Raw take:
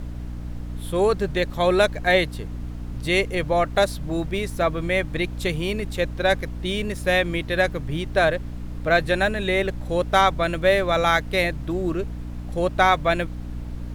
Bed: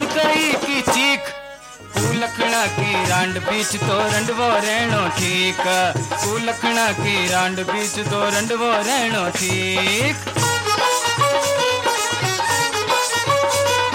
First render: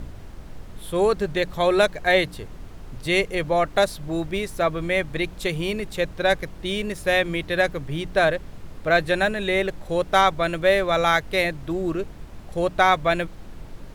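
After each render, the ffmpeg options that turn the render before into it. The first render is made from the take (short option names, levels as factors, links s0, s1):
-af "bandreject=f=60:t=h:w=4,bandreject=f=120:t=h:w=4,bandreject=f=180:t=h:w=4,bandreject=f=240:t=h:w=4,bandreject=f=300:t=h:w=4"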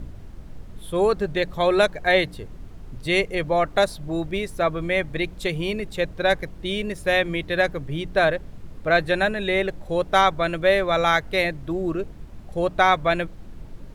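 -af "afftdn=nr=6:nf=-41"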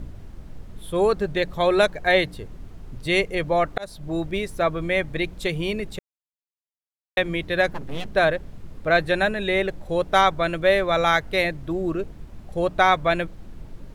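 -filter_complex "[0:a]asettb=1/sr,asplit=3[s0][s1][s2];[s0]atrim=end=7.714[s3];[s1]atrim=start=7.71:end=8.14,asetpts=PTS-STARTPTS,afade=t=in:d=0.004:c=qsin,afade=t=out:st=0.426:d=0.004:c=qsin,aeval=exprs='abs(val(0))':c=same[s4];[s2]atrim=start=8.136[s5];[s3][s4]acrossfade=d=0.004:c1=hsin:c2=qsin[s6];[s6][s5]acrossfade=d=0.004:c1=qsin:c2=hsin,asplit=4[s7][s8][s9][s10];[s7]atrim=end=3.78,asetpts=PTS-STARTPTS,afade=t=out:st=3.776:d=0.004:c=hsin[s11];[s8]atrim=start=3.78:end=5.99,asetpts=PTS-STARTPTS,afade=t=in:d=0.42:c=qsin,afade=t=out:st=2.206:d=0.004:c=hsin[s12];[s9]atrim=start=5.99:end=7.17,asetpts=PTS-STARTPTS,volume=0[s13];[s10]atrim=start=7.17,asetpts=PTS-STARTPTS,afade=t=in:d=0.004:c=hsin[s14];[s11][s12][s13][s14]concat=n=4:v=0:a=1"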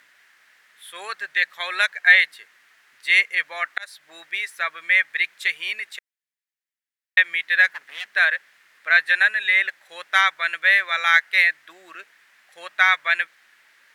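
-af "highpass=f=1800:t=q:w=3.7"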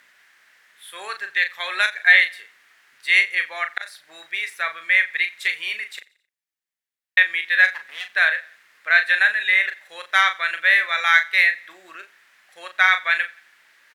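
-filter_complex "[0:a]asplit=2[s0][s1];[s1]adelay=38,volume=0.398[s2];[s0][s2]amix=inputs=2:normalize=0,aecho=1:1:88|176|264:0.075|0.0315|0.0132"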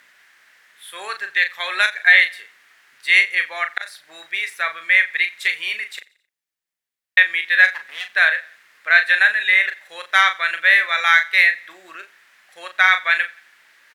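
-af "volume=1.33,alimiter=limit=0.891:level=0:latency=1"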